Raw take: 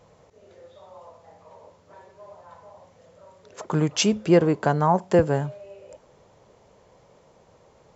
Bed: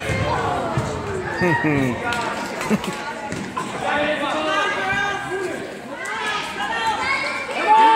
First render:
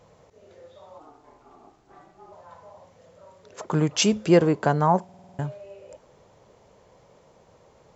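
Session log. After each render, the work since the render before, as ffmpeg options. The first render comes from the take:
-filter_complex "[0:a]asplit=3[a][b][c];[a]afade=t=out:st=0.98:d=0.02[d];[b]aeval=exprs='val(0)*sin(2*PI*220*n/s)':c=same,afade=t=in:st=0.98:d=0.02,afade=t=out:st=2.31:d=0.02[e];[c]afade=t=in:st=2.31:d=0.02[f];[d][e][f]amix=inputs=3:normalize=0,asettb=1/sr,asplit=3[g][h][i];[g]atrim=end=4.024[j];[h]atrim=start=4.02:end=4.49,asetpts=PTS-STARTPTS,afade=t=in:d=0.004:c=qsin,afade=t=out:st=0.466:d=0.004:c=qsin,highshelf=f=3.9k:g=6[k];[i]atrim=start=4.486[l];[j][k]acrossfade=d=0.004:c1=hsin:c2=qsin[m];[m][l]acrossfade=d=0.004:c1=qsin:c2=hsin,asplit=8[n][o][p][q][r][s][t][u];[n]atrim=end=5.092[v];[o]atrim=start=5.038:end=5.092[w];[p]atrim=start=5.038:end=5.092[x];[q]atrim=start=5.038:end=5.092[y];[r]atrim=start=5.038:end=5.092[z];[s]atrim=start=5.038:end=5.092[aa];[t]atrim=start=5.038:end=5.092[ab];[u]atrim=start=5.388[ac];[v][w]acrossfade=d=0.004:c1=hsin:c2=hsin[ad];[ad][x]acrossfade=d=0.004:c1=hsin:c2=hsin[ae];[ae][y]acrossfade=d=0.004:c1=hsin:c2=hsin[af];[af][z]acrossfade=d=0.004:c1=hsin:c2=hsin[ag];[ag][aa]acrossfade=d=0.004:c1=hsin:c2=hsin[ah];[ah][ab]acrossfade=d=0.004:c1=hsin:c2=hsin[ai];[ai][ac]acrossfade=d=0.004:c1=hsin:c2=hsin"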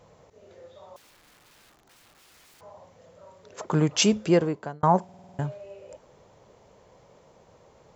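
-filter_complex "[0:a]asettb=1/sr,asplit=3[a][b][c];[a]atrim=end=0.964[d];[b]atrim=start=0.96:end=2.61,asetpts=PTS-STARTPTS,afade=t=in:d=0.004:c=qsin,afade=t=out:st=1.646:d=0.004:c=qsin,aeval=exprs='(mod(398*val(0)+1,2)-1)/398':c=same[e];[c]atrim=start=2.606[f];[d][e]acrossfade=d=0.004:c1=hsin:c2=qsin[g];[g][f]acrossfade=d=0.004:c1=qsin:c2=hsin,asplit=2[h][i];[h]atrim=end=4.83,asetpts=PTS-STARTPTS,afade=t=out:st=4.11:d=0.72[j];[i]atrim=start=4.83,asetpts=PTS-STARTPTS,afade=t=in:d=0.004:c=hsin[k];[j][k]concat=n=2:v=0:a=1"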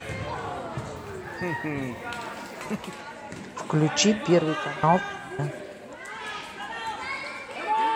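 -filter_complex "[1:a]volume=-11.5dB[a];[0:a][a]amix=inputs=2:normalize=0"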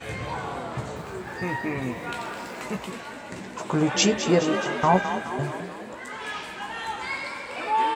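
-filter_complex "[0:a]asplit=2[a][b];[b]adelay=16,volume=-6.5dB[c];[a][c]amix=inputs=2:normalize=0,asplit=2[d][e];[e]asplit=7[f][g][h][i][j][k][l];[f]adelay=211,afreqshift=35,volume=-10.5dB[m];[g]adelay=422,afreqshift=70,volume=-15.1dB[n];[h]adelay=633,afreqshift=105,volume=-19.7dB[o];[i]adelay=844,afreqshift=140,volume=-24.2dB[p];[j]adelay=1055,afreqshift=175,volume=-28.8dB[q];[k]adelay=1266,afreqshift=210,volume=-33.4dB[r];[l]adelay=1477,afreqshift=245,volume=-38dB[s];[m][n][o][p][q][r][s]amix=inputs=7:normalize=0[t];[d][t]amix=inputs=2:normalize=0"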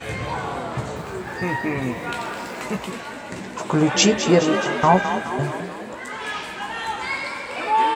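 -af "volume=4.5dB,alimiter=limit=-3dB:level=0:latency=1"

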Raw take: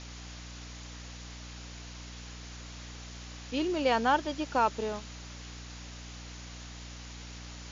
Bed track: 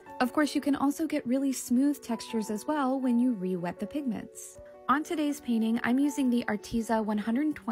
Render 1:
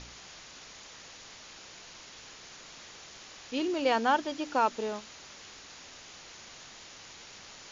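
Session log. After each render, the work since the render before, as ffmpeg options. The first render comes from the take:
-af "bandreject=f=60:t=h:w=4,bandreject=f=120:t=h:w=4,bandreject=f=180:t=h:w=4,bandreject=f=240:t=h:w=4,bandreject=f=300:t=h:w=4"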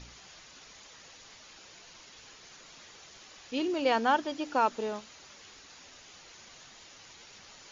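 -af "afftdn=nr=6:nf=-50"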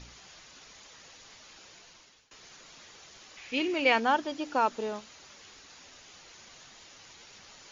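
-filter_complex "[0:a]asettb=1/sr,asplit=3[a][b][c];[a]atrim=end=3.374[d];[b]atrim=start=3.37:end=4,asetpts=PTS-STARTPTS,afade=t=in:d=0.004:c=qsin,afade=t=out:st=0.626:d=0.004:c=qsin,equalizer=f=2.3k:w=2.3:g=12.5[e];[c]atrim=start=3.996[f];[d][e]acrossfade=d=0.004:c1=hsin:c2=qsin[g];[g][f]acrossfade=d=0.004:c1=qsin:c2=hsin,asplit=2[h][i];[h]atrim=end=2.31,asetpts=PTS-STARTPTS,afade=t=out:st=1.56:d=0.75:c=qsin:silence=0.0749894[j];[i]atrim=start=2.31,asetpts=PTS-STARTPTS,afade=t=in:d=0.004:c=hsin:silence=0.0749894[k];[j][k]concat=n=2:v=0:a=1"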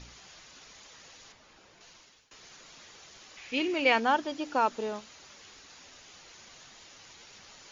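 -filter_complex "[0:a]asettb=1/sr,asplit=3[a][b][c];[a]atrim=end=1.324[d];[b]atrim=start=1.32:end=1.81,asetpts=PTS-STARTPTS,afade=t=in:d=0.004:c=qsin,afade=t=out:st=0.486:d=0.004:c=qsin,highshelf=f=2.3k:g=-11[e];[c]atrim=start=1.806[f];[d][e]acrossfade=d=0.004:c1=hsin:c2=qsin[g];[g][f]acrossfade=d=0.004:c1=qsin:c2=hsin"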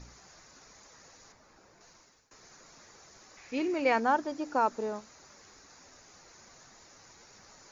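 -af "equalizer=f=3.1k:w=1.8:g=-15"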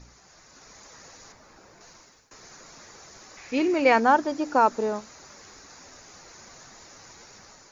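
-af "dynaudnorm=f=240:g=5:m=7.5dB"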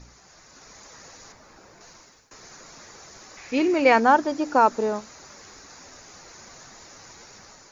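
-af "volume=2dB"

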